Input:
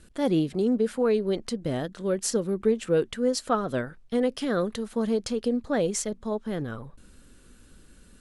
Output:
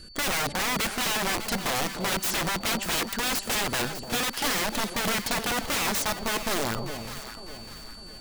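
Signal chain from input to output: whistle 4.5 kHz -52 dBFS; integer overflow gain 27 dB; echo whose repeats swap between lows and highs 301 ms, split 830 Hz, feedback 64%, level -7 dB; trim +5 dB

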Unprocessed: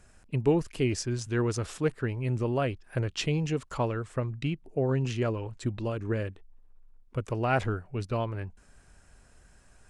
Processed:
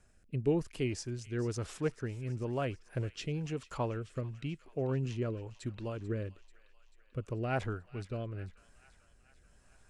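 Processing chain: rotary cabinet horn 1 Hz; feedback echo behind a high-pass 439 ms, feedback 63%, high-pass 1.5 kHz, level -15.5 dB; trim -5 dB

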